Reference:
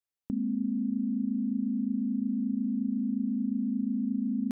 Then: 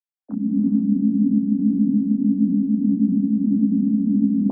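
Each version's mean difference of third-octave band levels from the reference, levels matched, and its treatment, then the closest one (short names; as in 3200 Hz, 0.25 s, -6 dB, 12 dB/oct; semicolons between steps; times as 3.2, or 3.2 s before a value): 5.0 dB: sine-wave speech; AGC gain up to 6 dB; non-linear reverb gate 0.5 s rising, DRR 10.5 dB; detuned doubles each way 57 cents; gain +9 dB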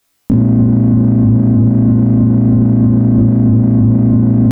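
12.0 dB: octaver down 1 oct, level -5 dB; flutter echo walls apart 3.1 m, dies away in 0.49 s; maximiser +29 dB; gain -2 dB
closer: first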